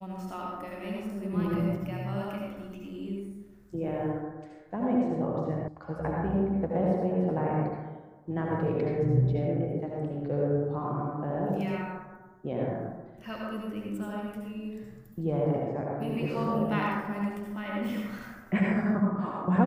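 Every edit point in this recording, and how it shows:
5.68 s: sound stops dead

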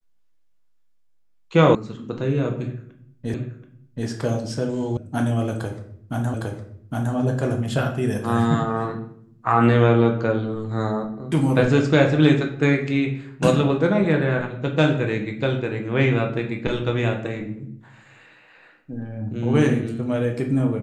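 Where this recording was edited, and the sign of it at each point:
1.75 s: sound stops dead
3.34 s: repeat of the last 0.73 s
4.97 s: sound stops dead
6.34 s: repeat of the last 0.81 s

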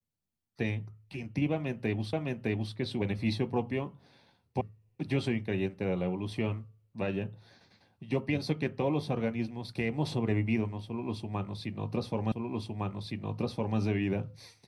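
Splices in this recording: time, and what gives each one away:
2.13 s: repeat of the last 0.61 s
4.61 s: sound stops dead
12.32 s: repeat of the last 1.46 s

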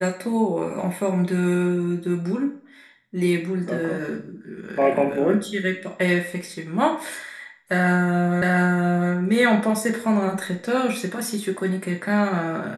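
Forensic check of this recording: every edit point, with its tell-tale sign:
8.42 s: repeat of the last 0.7 s

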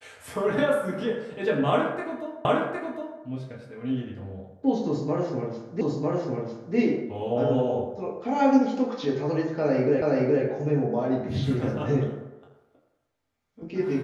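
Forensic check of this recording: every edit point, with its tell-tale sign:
2.45 s: repeat of the last 0.76 s
5.81 s: repeat of the last 0.95 s
10.02 s: repeat of the last 0.42 s

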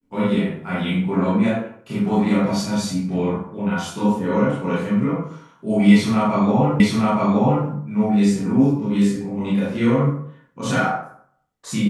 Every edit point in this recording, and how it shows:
6.80 s: repeat of the last 0.87 s

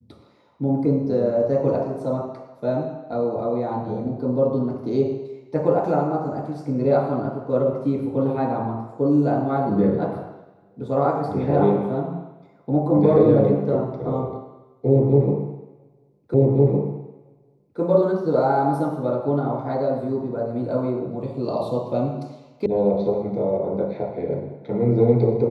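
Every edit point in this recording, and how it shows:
16.34 s: repeat of the last 1.46 s
22.66 s: sound stops dead

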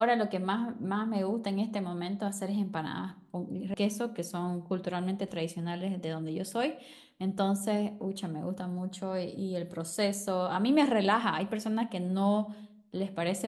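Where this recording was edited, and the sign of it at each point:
3.74 s: sound stops dead

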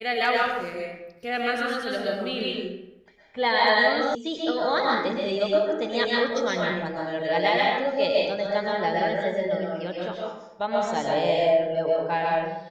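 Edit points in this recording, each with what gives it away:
4.15 s: sound stops dead

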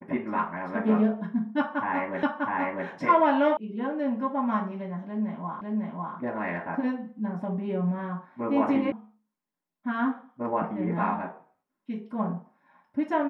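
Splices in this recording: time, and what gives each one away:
2.23 s: repeat of the last 0.65 s
3.57 s: sound stops dead
5.61 s: repeat of the last 0.55 s
8.92 s: sound stops dead

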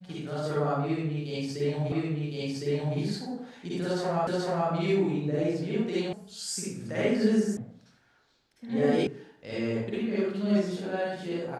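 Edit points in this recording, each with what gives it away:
1.92 s: repeat of the last 1.06 s
4.27 s: repeat of the last 0.43 s
6.13 s: sound stops dead
7.57 s: sound stops dead
9.07 s: sound stops dead

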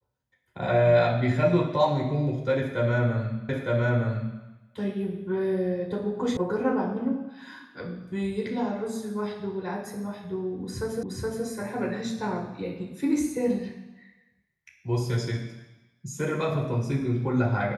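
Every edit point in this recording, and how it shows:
3.49 s: repeat of the last 0.91 s
6.37 s: sound stops dead
11.03 s: repeat of the last 0.42 s

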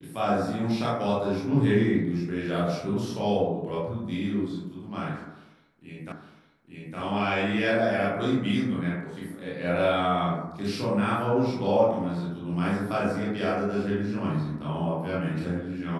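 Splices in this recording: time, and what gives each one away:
6.12 s: repeat of the last 0.86 s

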